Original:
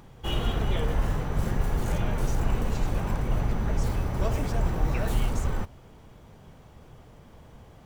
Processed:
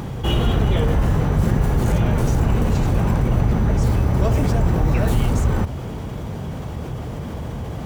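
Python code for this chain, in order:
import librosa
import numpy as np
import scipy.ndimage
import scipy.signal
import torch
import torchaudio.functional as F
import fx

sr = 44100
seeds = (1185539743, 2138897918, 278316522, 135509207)

y = scipy.signal.sosfilt(scipy.signal.butter(2, 54.0, 'highpass', fs=sr, output='sos'), x)
y = fx.low_shelf(y, sr, hz=420.0, db=7.0)
y = fx.env_flatten(y, sr, amount_pct=50)
y = F.gain(torch.from_numpy(y), 3.5).numpy()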